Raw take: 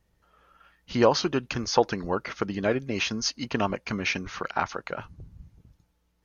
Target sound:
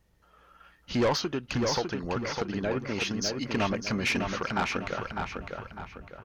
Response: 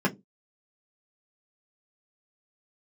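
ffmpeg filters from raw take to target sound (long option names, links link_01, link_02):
-filter_complex "[0:a]asettb=1/sr,asplit=3[link_01][link_02][link_03];[link_01]atrim=end=1.144[link_04];[link_02]atrim=start=1.14:end=3.55,asetpts=PTS-STARTPTS,afade=type=in:duration=0.004:curve=qsin,afade=type=out:start_time=2.406:duration=0.004:curve=qsin,acompressor=threshold=-32dB:ratio=2[link_05];[link_03]atrim=start=3.546[link_06];[link_04][link_05]acrossfade=duration=0.004:curve1=hsin:curve2=qsin[link_07];[link_07][link_06]acrossfade=duration=0.004:curve1=qsin:curve2=hsin,asoftclip=type=tanh:threshold=-22.5dB,asplit=2[link_08][link_09];[link_09]adelay=603,lowpass=frequency=4000:poles=1,volume=-4.5dB,asplit=2[link_10][link_11];[link_11]adelay=603,lowpass=frequency=4000:poles=1,volume=0.4,asplit=2[link_12][link_13];[link_13]adelay=603,lowpass=frequency=4000:poles=1,volume=0.4,asplit=2[link_14][link_15];[link_15]adelay=603,lowpass=frequency=4000:poles=1,volume=0.4,asplit=2[link_16][link_17];[link_17]adelay=603,lowpass=frequency=4000:poles=1,volume=0.4[link_18];[link_08][link_10][link_12][link_14][link_16][link_18]amix=inputs=6:normalize=0,volume=2dB"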